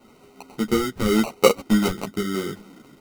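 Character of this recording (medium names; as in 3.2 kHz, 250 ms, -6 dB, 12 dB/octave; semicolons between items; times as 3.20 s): phasing stages 4, 0.86 Hz, lowest notch 590–2500 Hz; aliases and images of a low sample rate 1.7 kHz, jitter 0%; a shimmering, thickened sound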